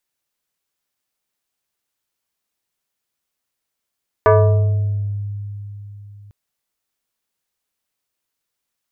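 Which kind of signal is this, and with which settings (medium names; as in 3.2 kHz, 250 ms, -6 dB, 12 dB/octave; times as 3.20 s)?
FM tone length 2.05 s, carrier 102 Hz, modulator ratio 5.27, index 2.1, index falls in 1.22 s exponential, decay 3.80 s, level -7 dB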